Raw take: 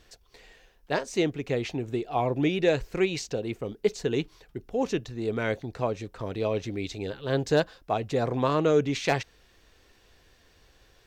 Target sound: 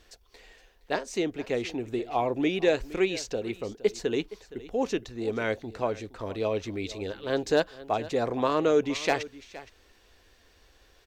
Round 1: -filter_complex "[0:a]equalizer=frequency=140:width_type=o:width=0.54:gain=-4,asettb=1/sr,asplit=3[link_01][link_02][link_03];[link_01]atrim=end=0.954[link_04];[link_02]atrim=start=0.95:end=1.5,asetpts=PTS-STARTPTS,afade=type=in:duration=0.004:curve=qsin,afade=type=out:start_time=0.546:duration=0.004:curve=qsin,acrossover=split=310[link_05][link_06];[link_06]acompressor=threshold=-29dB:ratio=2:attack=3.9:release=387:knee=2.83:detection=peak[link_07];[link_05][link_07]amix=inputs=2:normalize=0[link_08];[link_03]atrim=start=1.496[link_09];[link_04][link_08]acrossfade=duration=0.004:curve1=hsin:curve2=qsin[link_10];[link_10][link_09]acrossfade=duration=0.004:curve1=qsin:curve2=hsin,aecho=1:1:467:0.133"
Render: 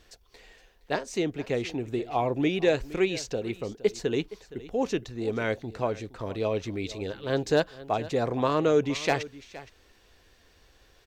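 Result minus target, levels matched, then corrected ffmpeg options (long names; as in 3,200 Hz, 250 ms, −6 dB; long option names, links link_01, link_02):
125 Hz band +4.5 dB
-filter_complex "[0:a]equalizer=frequency=140:width_type=o:width=0.54:gain=-12.5,asettb=1/sr,asplit=3[link_01][link_02][link_03];[link_01]atrim=end=0.954[link_04];[link_02]atrim=start=0.95:end=1.5,asetpts=PTS-STARTPTS,afade=type=in:duration=0.004:curve=qsin,afade=type=out:start_time=0.546:duration=0.004:curve=qsin,acrossover=split=310[link_05][link_06];[link_06]acompressor=threshold=-29dB:ratio=2:attack=3.9:release=387:knee=2.83:detection=peak[link_07];[link_05][link_07]amix=inputs=2:normalize=0[link_08];[link_03]atrim=start=1.496[link_09];[link_04][link_08]acrossfade=duration=0.004:curve1=hsin:curve2=qsin[link_10];[link_10][link_09]acrossfade=duration=0.004:curve1=qsin:curve2=hsin,aecho=1:1:467:0.133"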